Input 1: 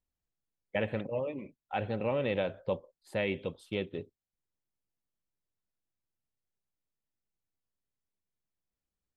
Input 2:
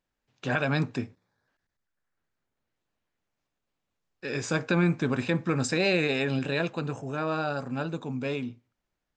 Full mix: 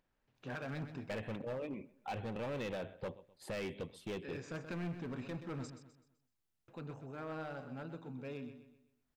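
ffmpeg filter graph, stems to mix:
ffmpeg -i stem1.wav -i stem2.wav -filter_complex "[0:a]equalizer=frequency=560:width_type=o:width=0.26:gain=-4.5,acompressor=threshold=-48dB:ratio=1.5,adelay=350,volume=2.5dB,asplit=2[link_01][link_02];[link_02]volume=-22.5dB[link_03];[1:a]lowpass=frequency=2400:poles=1,acompressor=mode=upward:threshold=-54dB:ratio=2.5,asoftclip=type=hard:threshold=-23.5dB,volume=-13.5dB,asplit=3[link_04][link_05][link_06];[link_04]atrim=end=5.7,asetpts=PTS-STARTPTS,afade=type=out:start_time=5.696:duration=0.004:curve=hsin[link_07];[link_05]atrim=start=5.7:end=6.68,asetpts=PTS-STARTPTS,volume=0[link_08];[link_06]atrim=start=6.68,asetpts=PTS-STARTPTS,afade=type=in:duration=0.004:curve=hsin[link_09];[link_07][link_08][link_09]concat=n=3:v=0:a=1,asplit=2[link_10][link_11];[link_11]volume=-10dB[link_12];[link_03][link_12]amix=inputs=2:normalize=0,aecho=0:1:127|254|381|508|635:1|0.39|0.152|0.0593|0.0231[link_13];[link_01][link_10][link_13]amix=inputs=3:normalize=0,asoftclip=type=hard:threshold=-36dB" out.wav

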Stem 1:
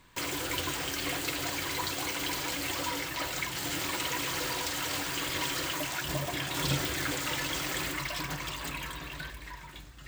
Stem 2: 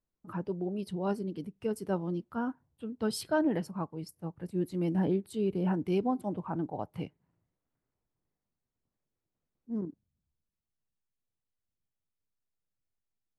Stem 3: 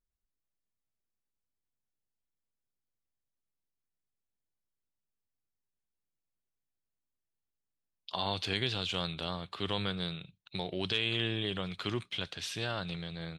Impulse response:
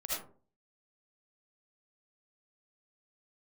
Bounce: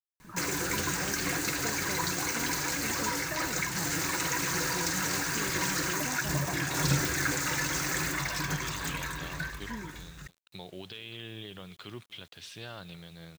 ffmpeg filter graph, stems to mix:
-filter_complex "[0:a]equalizer=frequency=160:width_type=o:width=0.33:gain=7,equalizer=frequency=630:width_type=o:width=0.33:gain=-5,equalizer=frequency=1600:width_type=o:width=0.33:gain=6,equalizer=frequency=3150:width_type=o:width=0.33:gain=-11,equalizer=frequency=6300:width_type=o:width=0.33:gain=7,adelay=200,volume=1.5dB[link_01];[1:a]acompressor=threshold=-36dB:ratio=6,volume=-2.5dB,asplit=2[link_02][link_03];[2:a]alimiter=limit=-22.5dB:level=0:latency=1:release=183,volume=-7dB,asplit=2[link_04][link_05];[link_05]volume=-22.5dB[link_06];[link_03]apad=whole_len=590085[link_07];[link_04][link_07]sidechaincompress=threshold=-50dB:ratio=8:attack=16:release=617[link_08];[link_06]aecho=0:1:238:1[link_09];[link_01][link_02][link_08][link_09]amix=inputs=4:normalize=0,acrusher=bits=9:mix=0:aa=0.000001"

